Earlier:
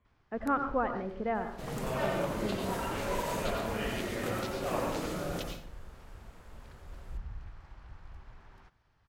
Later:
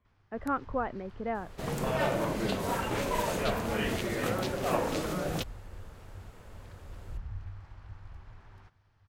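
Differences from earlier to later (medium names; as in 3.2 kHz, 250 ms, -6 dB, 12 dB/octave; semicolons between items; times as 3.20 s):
first sound: add peaking EQ 98 Hz +13.5 dB 0.28 oct; second sound +8.0 dB; reverb: off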